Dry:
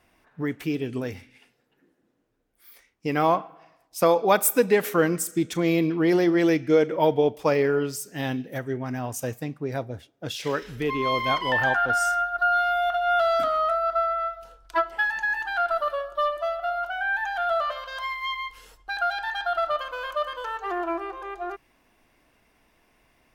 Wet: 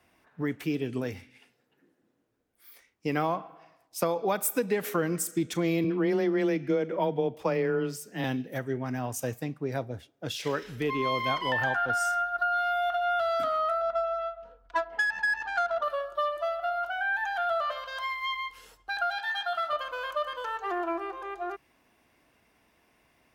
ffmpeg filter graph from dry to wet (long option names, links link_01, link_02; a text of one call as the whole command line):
ffmpeg -i in.wav -filter_complex "[0:a]asettb=1/sr,asplit=3[link_01][link_02][link_03];[link_01]atrim=end=5.844[link_04];[link_02]atrim=start=5.84:end=8.24,asetpts=PTS-STARTPTS,afade=type=in:duration=0.004:curve=qsin,afade=type=out:start_time=2.396:duration=0.004:curve=qsin,bass=frequency=250:gain=1,treble=frequency=4000:gain=-6,afreqshift=14[link_05];[link_03]atrim=start=8.236[link_06];[link_04][link_05]acrossfade=duration=0.004:curve1=hsin:curve2=qsin[link_07];[link_07][link_06]acrossfade=duration=0.004:curve1=qsin:curve2=hsin,asettb=1/sr,asplit=3[link_08][link_09][link_10];[link_08]atrim=end=13.814[link_11];[link_09]atrim=start=13.81:end=15.83,asetpts=PTS-STARTPTS,afade=type=in:duration=0.004:curve=qsin,afade=type=out:start_time=2.016:duration=0.004:curve=qsin,aecho=1:1:4.2:0.67,atrim=end_sample=89082,adynamicsmooth=sensitivity=2:basefreq=1800[link_12];[link_10]atrim=start=15.826[link_13];[link_11][link_12]acrossfade=duration=0.004:curve1=hsin:curve2=qsin[link_14];[link_14][link_13]acrossfade=duration=0.004:curve1=qsin:curve2=hsin,asettb=1/sr,asplit=3[link_15][link_16][link_17];[link_15]atrim=end=19.184[link_18];[link_16]atrim=start=19.18:end=19.73,asetpts=PTS-STARTPTS,afade=type=in:duration=0.004:curve=qsin,afade=type=out:start_time=0.546:duration=0.004:curve=qsin,highpass=frequency=120:width=0.5412,highpass=frequency=120:width=1.3066,equalizer=frequency=410:width_type=o:width=1.7:gain=-8.5,asplit=2[link_19][link_20];[link_20]adelay=14,volume=-3.5dB[link_21];[link_19][link_21]amix=inputs=2:normalize=0,atrim=end_sample=24255[link_22];[link_17]atrim=start=19.726[link_23];[link_18][link_22]acrossfade=duration=0.004:curve1=hsin:curve2=qsin[link_24];[link_24][link_23]acrossfade=duration=0.004:curve1=qsin:curve2=hsin,highpass=61,acrossover=split=170[link_25][link_26];[link_26]acompressor=threshold=-22dB:ratio=6[link_27];[link_25][link_27]amix=inputs=2:normalize=0,volume=-2dB" out.wav